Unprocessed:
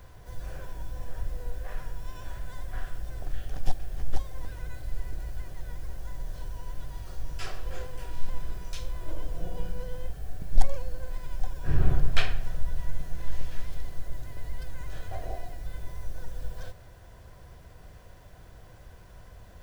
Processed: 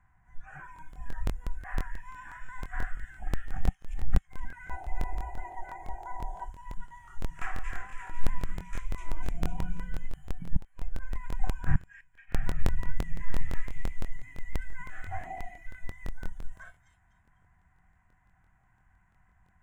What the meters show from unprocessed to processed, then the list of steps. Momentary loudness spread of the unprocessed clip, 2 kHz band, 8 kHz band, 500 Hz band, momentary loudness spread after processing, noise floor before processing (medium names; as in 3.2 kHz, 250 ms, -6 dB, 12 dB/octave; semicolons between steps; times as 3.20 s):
18 LU, +1.5 dB, no reading, -4.0 dB, 14 LU, -50 dBFS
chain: time-frequency box 4.69–6.45 s, 340–1000 Hz +12 dB; hum notches 50/100/150 Hz; inverted gate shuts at -11 dBFS, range -30 dB; FFT filter 120 Hz 0 dB, 180 Hz +4 dB, 340 Hz -8 dB, 520 Hz -25 dB, 760 Hz +5 dB, 1.2 kHz +4 dB, 2 kHz +8 dB, 4.6 kHz -27 dB, 7.1 kHz +3 dB; feedback echo behind a high-pass 250 ms, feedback 61%, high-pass 2.2 kHz, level -3 dB; spectral noise reduction 17 dB; distance through air 100 m; crackling interface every 0.17 s, samples 1024, repeat, from 0.74 s; trim +1 dB